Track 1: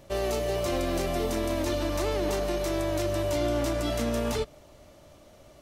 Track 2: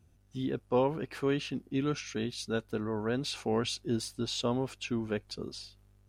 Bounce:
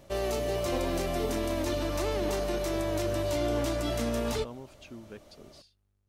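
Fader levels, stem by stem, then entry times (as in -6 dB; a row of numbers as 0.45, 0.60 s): -2.0, -12.5 dB; 0.00, 0.00 s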